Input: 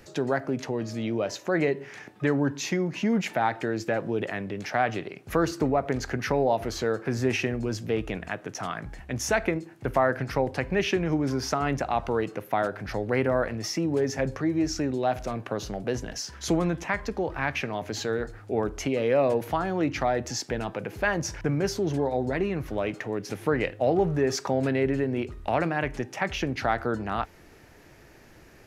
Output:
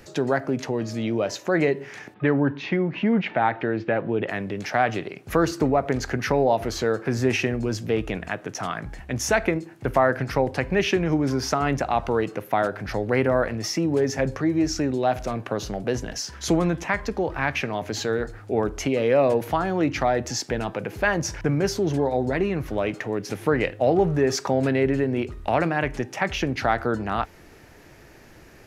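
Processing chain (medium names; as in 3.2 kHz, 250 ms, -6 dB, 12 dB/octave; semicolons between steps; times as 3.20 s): 2.14–4.29 s: low-pass 3.3 kHz 24 dB/octave; trim +3.5 dB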